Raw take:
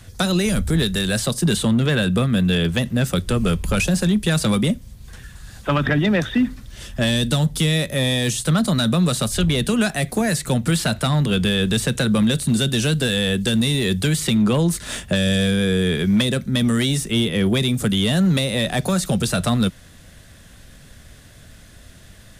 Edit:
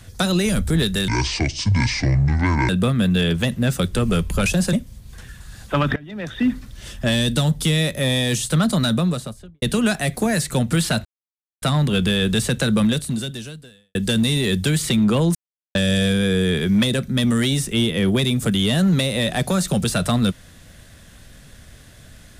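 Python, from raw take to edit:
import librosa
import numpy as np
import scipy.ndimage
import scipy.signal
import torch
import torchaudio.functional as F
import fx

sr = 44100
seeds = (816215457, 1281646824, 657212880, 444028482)

y = fx.studio_fade_out(x, sr, start_s=8.76, length_s=0.81)
y = fx.edit(y, sr, fx.speed_span(start_s=1.08, length_s=0.95, speed=0.59),
    fx.cut(start_s=4.07, length_s=0.61),
    fx.fade_in_from(start_s=5.91, length_s=0.52, curve='qua', floor_db=-23.0),
    fx.insert_silence(at_s=11.0, length_s=0.57),
    fx.fade_out_span(start_s=12.22, length_s=1.11, curve='qua'),
    fx.silence(start_s=14.73, length_s=0.4), tone=tone)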